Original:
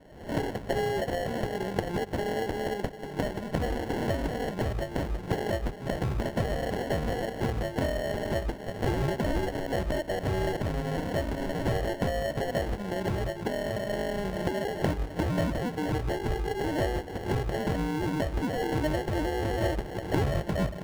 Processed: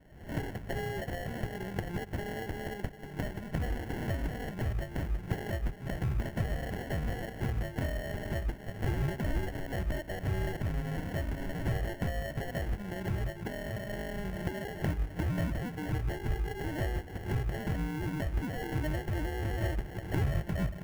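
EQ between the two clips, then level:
octave-band graphic EQ 250/500/1,000/4,000/8,000 Hz −5/−9/−7/−9/−5 dB
0.0 dB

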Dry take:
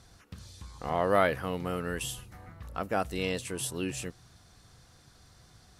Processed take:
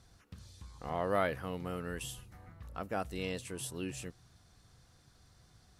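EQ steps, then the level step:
low-shelf EQ 220 Hz +3 dB
−7.0 dB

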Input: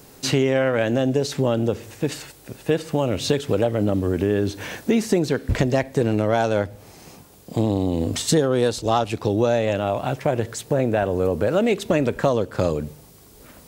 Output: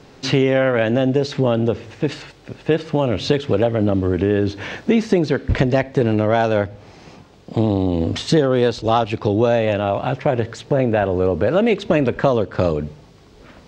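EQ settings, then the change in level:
high-frequency loss of the air 170 metres
parametric band 4,000 Hz +3 dB 2.6 octaves
+3.5 dB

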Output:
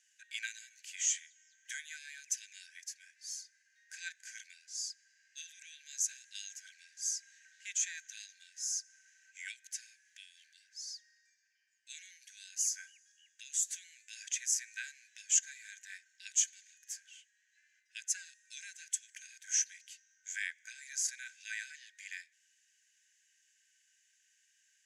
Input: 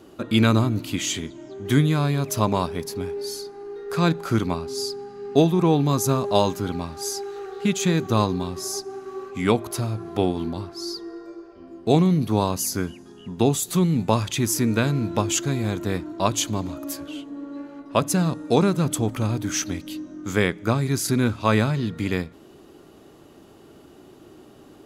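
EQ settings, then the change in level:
linear-phase brick-wall high-pass 1,500 Hz
high-frequency loss of the air 110 metres
high shelf with overshoot 5,200 Hz +9 dB, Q 3
−8.5 dB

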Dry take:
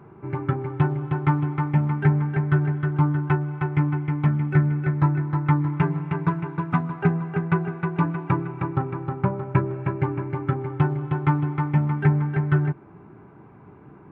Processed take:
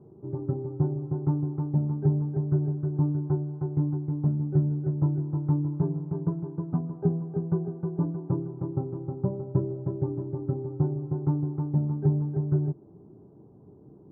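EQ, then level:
transistor ladder low-pass 670 Hz, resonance 25%
+1.0 dB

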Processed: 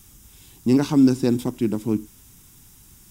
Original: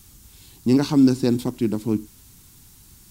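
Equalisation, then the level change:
parametric band 80 Hz −2.5 dB
notch filter 4,300 Hz, Q 5.2
0.0 dB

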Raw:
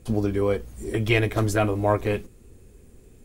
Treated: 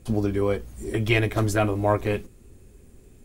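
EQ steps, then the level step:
notch filter 470 Hz, Q 12
0.0 dB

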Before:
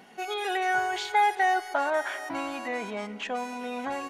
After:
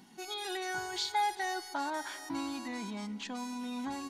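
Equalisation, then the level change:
dynamic equaliser 4,500 Hz, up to +5 dB, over −53 dBFS, Q 3.5
flat-topped bell 560 Hz −15 dB 1.1 octaves
flat-topped bell 1,800 Hz −10.5 dB
0.0 dB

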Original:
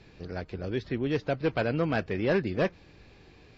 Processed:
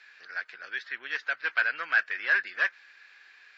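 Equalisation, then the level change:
high-pass with resonance 1,600 Hz, resonance Q 4.8
0.0 dB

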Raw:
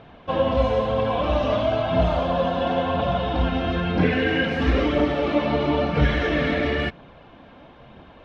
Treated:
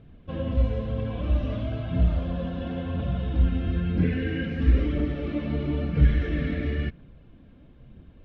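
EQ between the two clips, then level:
dynamic equaliser 1,800 Hz, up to +4 dB, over −41 dBFS, Q 1.1
spectral tilt −3 dB per octave
parametric band 840 Hz −14.5 dB 1.4 octaves
−8.5 dB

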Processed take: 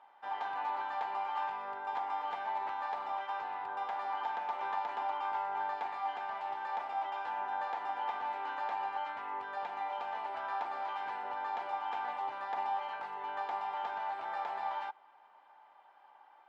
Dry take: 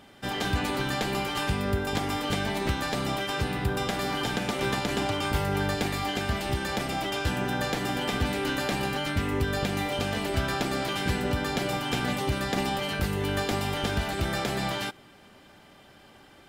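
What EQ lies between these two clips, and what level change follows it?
four-pole ladder band-pass 950 Hz, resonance 75%
+2.5 dB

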